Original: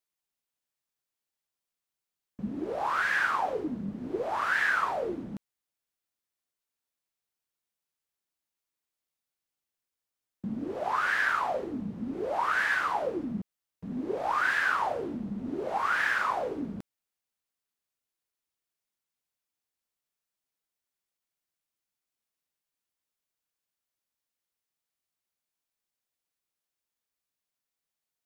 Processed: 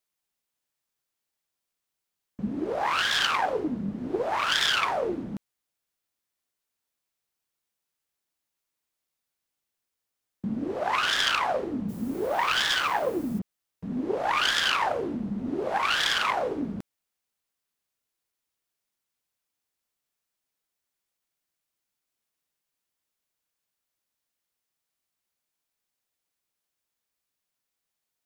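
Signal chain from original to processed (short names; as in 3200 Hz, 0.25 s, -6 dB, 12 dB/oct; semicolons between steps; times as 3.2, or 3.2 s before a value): self-modulated delay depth 0.25 ms; 11.88–13.38 added noise blue -57 dBFS; gain +4 dB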